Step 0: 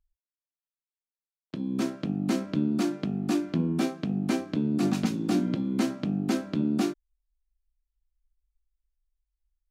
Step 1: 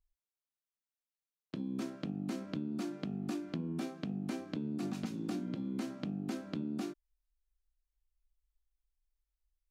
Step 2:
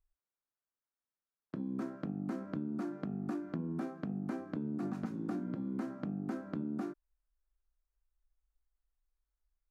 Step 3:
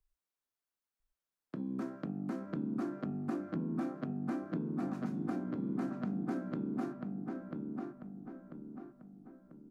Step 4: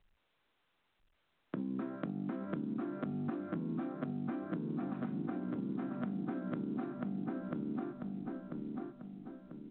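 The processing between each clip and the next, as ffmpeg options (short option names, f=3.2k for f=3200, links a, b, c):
-af "acompressor=threshold=-30dB:ratio=6,volume=-4.5dB"
-af "highshelf=f=2.1k:t=q:w=1.5:g=-11.5"
-filter_complex "[0:a]acrossover=split=110|1500[a][b][c];[a]alimiter=level_in=32dB:limit=-24dB:level=0:latency=1,volume=-32dB[d];[d][b][c]amix=inputs=3:normalize=0,asplit=2[e][f];[f]adelay=992,lowpass=f=2.3k:p=1,volume=-3dB,asplit=2[g][h];[h]adelay=992,lowpass=f=2.3k:p=1,volume=0.45,asplit=2[i][j];[j]adelay=992,lowpass=f=2.3k:p=1,volume=0.45,asplit=2[k][l];[l]adelay=992,lowpass=f=2.3k:p=1,volume=0.45,asplit=2[m][n];[n]adelay=992,lowpass=f=2.3k:p=1,volume=0.45,asplit=2[o][p];[p]adelay=992,lowpass=f=2.3k:p=1,volume=0.45[q];[e][g][i][k][m][o][q]amix=inputs=7:normalize=0"
-af "acompressor=threshold=-40dB:ratio=20,volume=6dB" -ar 8000 -c:a pcm_mulaw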